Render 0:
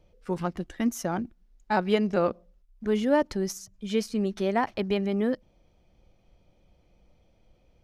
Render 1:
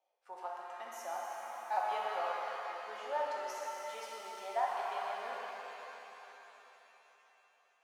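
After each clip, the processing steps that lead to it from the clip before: ladder high-pass 690 Hz, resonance 65%; shimmer reverb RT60 3.8 s, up +7 st, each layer -8 dB, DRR -4 dB; gain -6 dB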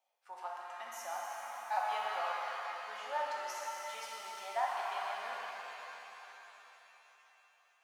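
HPF 210 Hz; bell 400 Hz -12 dB 1.4 oct; gain +3.5 dB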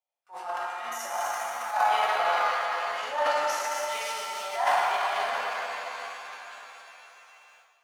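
gate with hold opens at -56 dBFS; transient shaper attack -12 dB, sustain +10 dB; plate-style reverb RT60 1.3 s, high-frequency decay 0.85×, DRR 0 dB; gain +8 dB

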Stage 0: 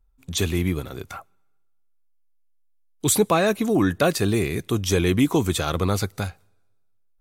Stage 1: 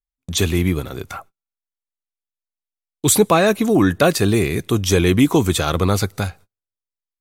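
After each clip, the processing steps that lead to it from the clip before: gate -46 dBFS, range -34 dB; gain +5 dB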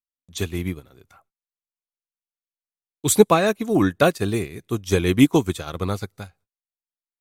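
upward expander 2.5:1, over -25 dBFS; gain +2.5 dB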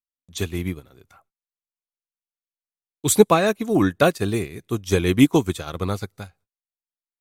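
nothing audible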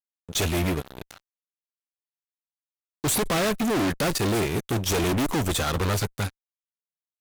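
tube stage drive 13 dB, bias 0.6; fuzz box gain 43 dB, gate -50 dBFS; gain -9 dB

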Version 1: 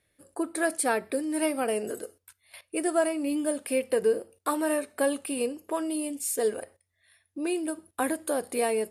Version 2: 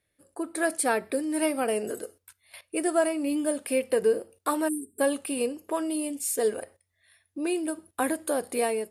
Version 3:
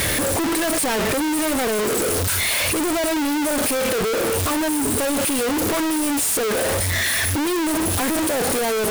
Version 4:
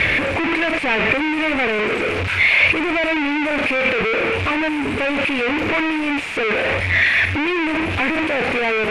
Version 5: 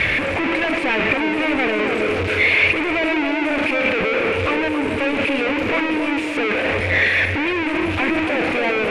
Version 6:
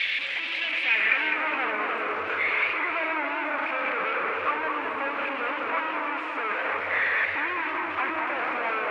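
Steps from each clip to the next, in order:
spectral delete 4.68–5, 440–7400 Hz; AGC gain up to 6 dB; gain -5 dB
infinite clipping; gain +8 dB
synth low-pass 2400 Hz, resonance Q 5.1
narrowing echo 0.275 s, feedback 60%, band-pass 430 Hz, level -3 dB; gain -1.5 dB
band-pass sweep 3500 Hz -> 1200 Hz, 0.59–1.44; warbling echo 0.21 s, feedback 59%, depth 161 cents, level -6 dB

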